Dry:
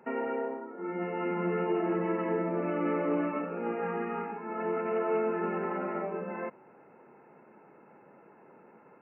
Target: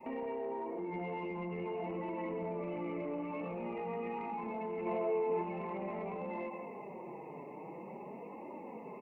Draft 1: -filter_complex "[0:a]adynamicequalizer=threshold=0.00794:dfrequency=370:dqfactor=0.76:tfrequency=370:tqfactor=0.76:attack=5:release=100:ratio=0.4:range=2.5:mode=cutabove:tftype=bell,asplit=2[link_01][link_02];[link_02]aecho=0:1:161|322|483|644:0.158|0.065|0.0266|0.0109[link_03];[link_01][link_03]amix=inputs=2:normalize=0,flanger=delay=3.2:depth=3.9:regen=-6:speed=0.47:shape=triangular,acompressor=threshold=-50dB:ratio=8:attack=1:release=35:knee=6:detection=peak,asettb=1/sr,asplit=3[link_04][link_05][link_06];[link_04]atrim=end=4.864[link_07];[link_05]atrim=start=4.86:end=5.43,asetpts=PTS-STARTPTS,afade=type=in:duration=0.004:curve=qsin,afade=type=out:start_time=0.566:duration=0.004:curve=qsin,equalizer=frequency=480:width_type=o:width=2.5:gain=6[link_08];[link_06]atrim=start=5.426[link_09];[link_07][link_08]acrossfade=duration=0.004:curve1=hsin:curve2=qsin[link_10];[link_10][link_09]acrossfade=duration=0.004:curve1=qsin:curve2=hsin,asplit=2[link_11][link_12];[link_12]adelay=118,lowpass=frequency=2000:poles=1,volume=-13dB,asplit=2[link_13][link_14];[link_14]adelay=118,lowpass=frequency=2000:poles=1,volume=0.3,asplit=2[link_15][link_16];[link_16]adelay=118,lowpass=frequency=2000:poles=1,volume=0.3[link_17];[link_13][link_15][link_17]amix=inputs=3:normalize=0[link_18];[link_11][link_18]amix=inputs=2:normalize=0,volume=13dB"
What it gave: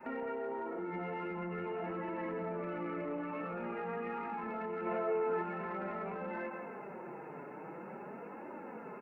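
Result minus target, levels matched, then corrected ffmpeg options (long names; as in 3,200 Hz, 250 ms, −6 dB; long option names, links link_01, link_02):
2,000 Hz band +4.0 dB
-filter_complex "[0:a]adynamicequalizer=threshold=0.00794:dfrequency=370:dqfactor=0.76:tfrequency=370:tqfactor=0.76:attack=5:release=100:ratio=0.4:range=2.5:mode=cutabove:tftype=bell,asuperstop=centerf=1500:order=8:qfactor=1.9,asplit=2[link_01][link_02];[link_02]aecho=0:1:161|322|483|644:0.158|0.065|0.0266|0.0109[link_03];[link_01][link_03]amix=inputs=2:normalize=0,flanger=delay=3.2:depth=3.9:regen=-6:speed=0.47:shape=triangular,acompressor=threshold=-50dB:ratio=8:attack=1:release=35:knee=6:detection=peak,asettb=1/sr,asplit=3[link_04][link_05][link_06];[link_04]atrim=end=4.864[link_07];[link_05]atrim=start=4.86:end=5.43,asetpts=PTS-STARTPTS,afade=type=in:duration=0.004:curve=qsin,afade=type=out:start_time=0.566:duration=0.004:curve=qsin,equalizer=frequency=480:width_type=o:width=2.5:gain=6[link_08];[link_06]atrim=start=5.426[link_09];[link_07][link_08]acrossfade=duration=0.004:curve1=hsin:curve2=qsin[link_10];[link_10][link_09]acrossfade=duration=0.004:curve1=qsin:curve2=hsin,asplit=2[link_11][link_12];[link_12]adelay=118,lowpass=frequency=2000:poles=1,volume=-13dB,asplit=2[link_13][link_14];[link_14]adelay=118,lowpass=frequency=2000:poles=1,volume=0.3,asplit=2[link_15][link_16];[link_16]adelay=118,lowpass=frequency=2000:poles=1,volume=0.3[link_17];[link_13][link_15][link_17]amix=inputs=3:normalize=0[link_18];[link_11][link_18]amix=inputs=2:normalize=0,volume=13dB"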